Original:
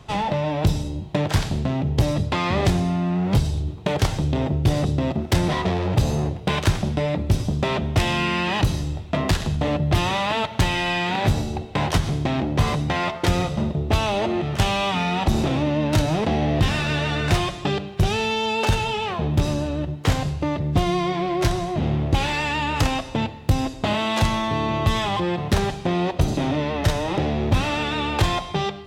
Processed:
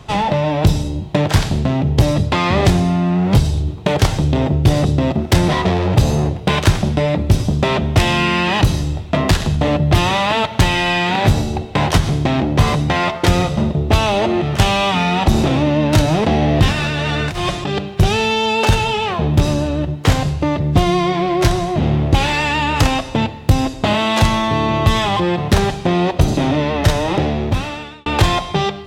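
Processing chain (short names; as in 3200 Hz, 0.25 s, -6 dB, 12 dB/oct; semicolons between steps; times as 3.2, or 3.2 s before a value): 16.71–17.79 negative-ratio compressor -26 dBFS, ratio -1; 27.13–28.06 fade out; gain +6.5 dB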